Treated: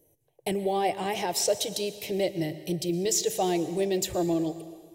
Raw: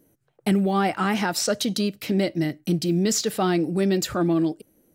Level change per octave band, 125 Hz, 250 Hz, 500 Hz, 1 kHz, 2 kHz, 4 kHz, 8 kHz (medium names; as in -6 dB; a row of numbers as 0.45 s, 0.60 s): -9.5 dB, -8.0 dB, -1.5 dB, -3.5 dB, -8.0 dB, -3.5 dB, -0.5 dB